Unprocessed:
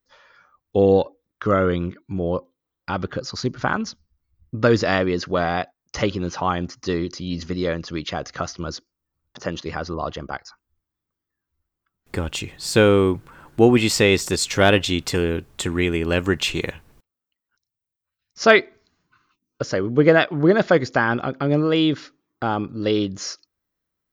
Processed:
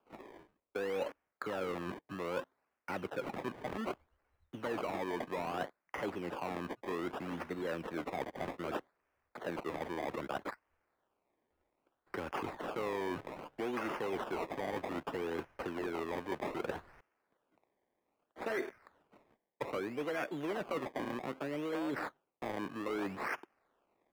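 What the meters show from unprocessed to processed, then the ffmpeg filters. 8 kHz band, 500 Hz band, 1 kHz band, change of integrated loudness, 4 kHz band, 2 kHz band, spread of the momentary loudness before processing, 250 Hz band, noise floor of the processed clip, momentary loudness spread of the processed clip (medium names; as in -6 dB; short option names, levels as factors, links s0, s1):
-27.0 dB, -18.0 dB, -13.5 dB, -18.5 dB, -23.5 dB, -18.5 dB, 15 LU, -18.5 dB, -85 dBFS, 7 LU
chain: -filter_complex "[0:a]acrossover=split=140|1400[s0][s1][s2];[s1]acrusher=bits=7:mix=0:aa=0.000001[s3];[s0][s3][s2]amix=inputs=3:normalize=0,asoftclip=type=tanh:threshold=0.224,bandreject=f=1200:w=8.6,acrossover=split=540|1800[s4][s5][s6];[s4]acompressor=threshold=0.0355:ratio=4[s7];[s5]acompressor=threshold=0.0126:ratio=4[s8];[s6]acompressor=threshold=0.0282:ratio=4[s9];[s7][s8][s9]amix=inputs=3:normalize=0,acrusher=samples=22:mix=1:aa=0.000001:lfo=1:lforange=22:lforate=0.63,lowshelf=f=160:g=-5,areverse,acompressor=threshold=0.00891:ratio=6,areverse,acrossover=split=220 2800:gain=0.224 1 0.178[s10][s11][s12];[s10][s11][s12]amix=inputs=3:normalize=0,volume=2.24"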